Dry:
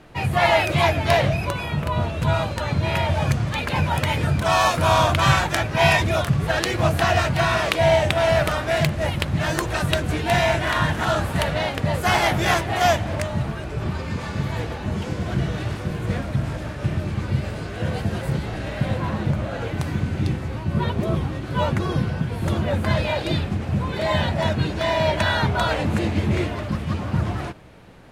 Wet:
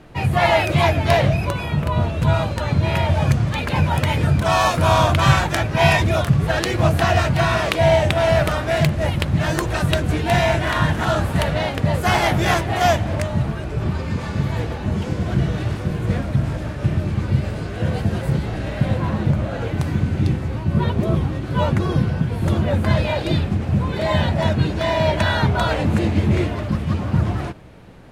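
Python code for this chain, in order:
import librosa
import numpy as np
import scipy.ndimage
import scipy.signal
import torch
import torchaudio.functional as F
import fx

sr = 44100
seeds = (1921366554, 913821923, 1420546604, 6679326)

y = fx.low_shelf(x, sr, hz=500.0, db=4.5)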